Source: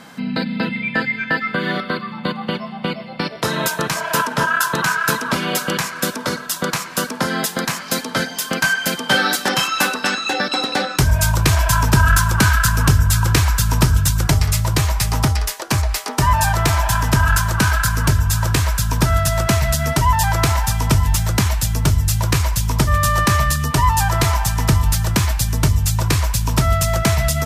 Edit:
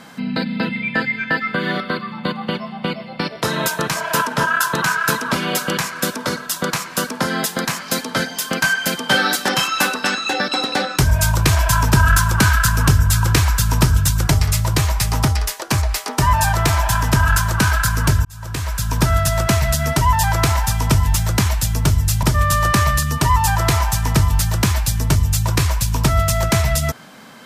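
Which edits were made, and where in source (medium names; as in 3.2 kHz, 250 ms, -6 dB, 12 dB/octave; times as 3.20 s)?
18.25–19.02 s: fade in linear
22.23–22.76 s: delete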